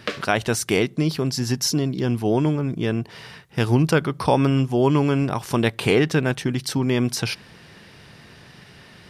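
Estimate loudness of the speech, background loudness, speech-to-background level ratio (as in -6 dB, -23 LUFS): -22.0 LUFS, -34.0 LUFS, 12.0 dB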